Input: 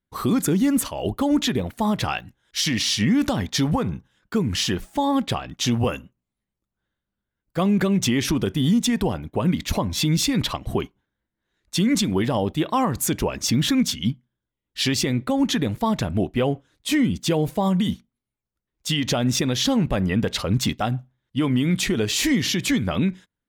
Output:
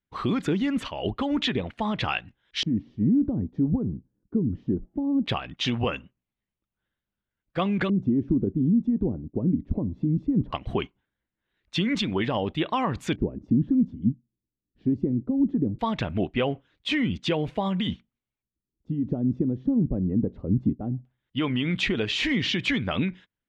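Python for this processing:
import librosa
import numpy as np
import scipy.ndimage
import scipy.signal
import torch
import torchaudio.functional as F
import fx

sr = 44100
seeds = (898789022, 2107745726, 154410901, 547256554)

y = fx.filter_lfo_lowpass(x, sr, shape='square', hz=0.19, low_hz=300.0, high_hz=2900.0, q=1.7)
y = fx.wow_flutter(y, sr, seeds[0], rate_hz=2.1, depth_cents=22.0)
y = fx.hpss(y, sr, part='percussive', gain_db=4)
y = y * 10.0 ** (-6.5 / 20.0)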